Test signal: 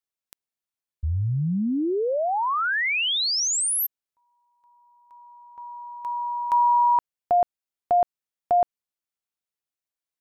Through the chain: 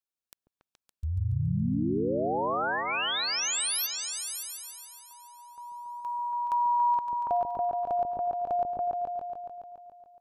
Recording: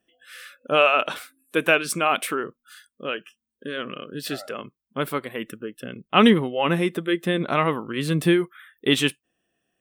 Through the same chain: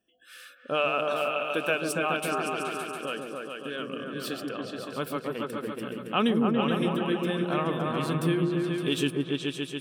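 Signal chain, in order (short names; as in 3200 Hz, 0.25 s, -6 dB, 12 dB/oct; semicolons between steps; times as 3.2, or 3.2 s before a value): on a send: repeats that get brighter 0.141 s, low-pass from 400 Hz, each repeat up 2 oct, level 0 dB; on the sum: compressor 1.5:1, threshold -25 dBFS; notch 2000 Hz, Q 5.3; gain -4.5 dB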